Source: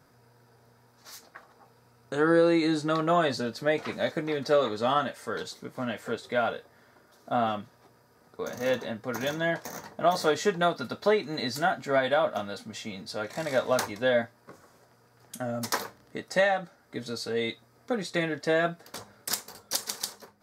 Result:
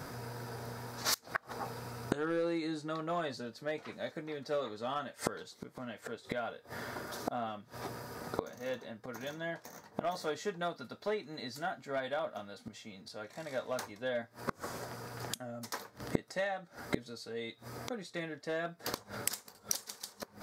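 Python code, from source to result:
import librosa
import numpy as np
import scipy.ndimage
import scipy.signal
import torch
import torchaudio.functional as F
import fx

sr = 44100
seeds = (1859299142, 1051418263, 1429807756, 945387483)

y = np.clip(10.0 ** (16.0 / 20.0) * x, -1.0, 1.0) / 10.0 ** (16.0 / 20.0)
y = fx.gate_flip(y, sr, shuts_db=-34.0, range_db=-28)
y = y * librosa.db_to_amplitude(16.5)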